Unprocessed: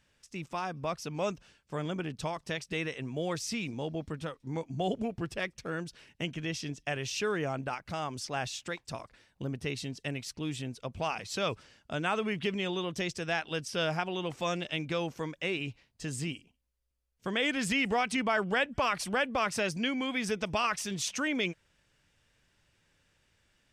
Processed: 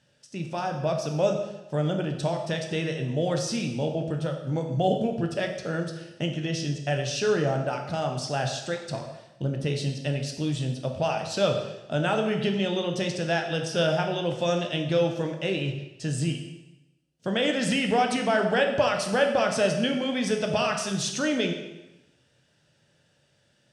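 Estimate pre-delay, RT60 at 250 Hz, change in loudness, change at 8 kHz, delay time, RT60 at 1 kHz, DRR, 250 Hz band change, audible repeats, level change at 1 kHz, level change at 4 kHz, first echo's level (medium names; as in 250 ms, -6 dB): 5 ms, 0.95 s, +6.5 dB, +4.0 dB, no echo, 1.0 s, 3.0 dB, +7.0 dB, no echo, +5.0 dB, +5.0 dB, no echo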